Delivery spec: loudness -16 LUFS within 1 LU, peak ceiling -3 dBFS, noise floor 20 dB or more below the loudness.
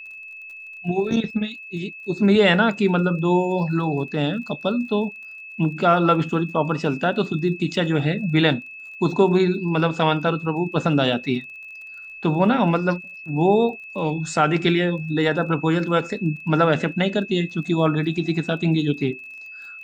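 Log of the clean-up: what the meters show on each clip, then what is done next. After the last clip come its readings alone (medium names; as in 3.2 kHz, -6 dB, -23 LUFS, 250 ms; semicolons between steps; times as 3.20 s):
tick rate 33 per s; steady tone 2.6 kHz; tone level -36 dBFS; loudness -21.5 LUFS; peak level -3.5 dBFS; loudness target -16.0 LUFS
-> de-click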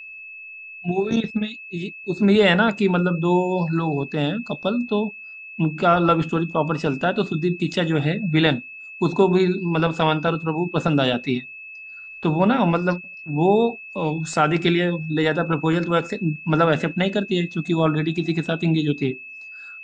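tick rate 0.050 per s; steady tone 2.6 kHz; tone level -36 dBFS
-> band-stop 2.6 kHz, Q 30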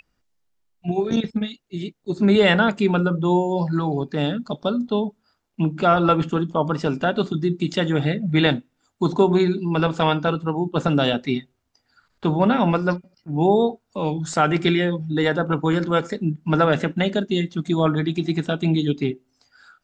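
steady tone not found; loudness -21.5 LUFS; peak level -3.5 dBFS; loudness target -16.0 LUFS
-> trim +5.5 dB; peak limiter -3 dBFS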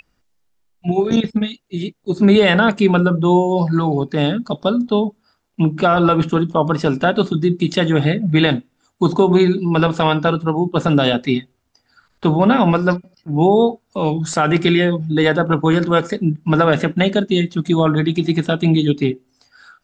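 loudness -16.5 LUFS; peak level -3.0 dBFS; noise floor -67 dBFS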